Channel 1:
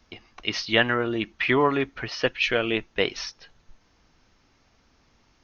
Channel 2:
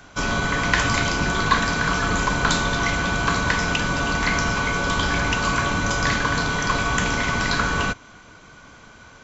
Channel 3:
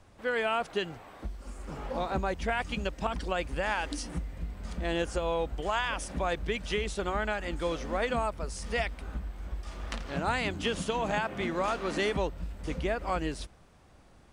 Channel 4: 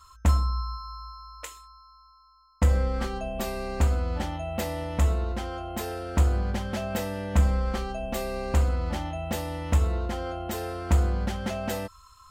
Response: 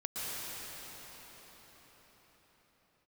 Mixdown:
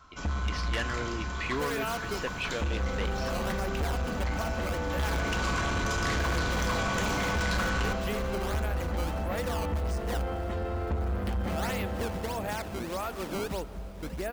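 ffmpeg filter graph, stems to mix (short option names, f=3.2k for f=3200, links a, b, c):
-filter_complex "[0:a]volume=-9dB[a];[1:a]volume=-6dB,afade=t=in:st=4.9:d=0.54:silence=0.298538,asplit=2[b][c];[c]volume=-13.5dB[d];[2:a]acrusher=samples=14:mix=1:aa=0.000001:lfo=1:lforange=22.4:lforate=1.6,adelay=1350,volume=-3.5dB,asplit=2[e][f];[f]volume=-20.5dB[g];[3:a]lowpass=2.6k,acompressor=threshold=-22dB:ratio=6,volume=-5.5dB,asplit=2[h][i];[i]volume=-3dB[j];[4:a]atrim=start_sample=2205[k];[d][g][j]amix=inputs=3:normalize=0[l];[l][k]afir=irnorm=-1:irlink=0[m];[a][b][e][h][m]amix=inputs=5:normalize=0,asoftclip=type=tanh:threshold=-24.5dB"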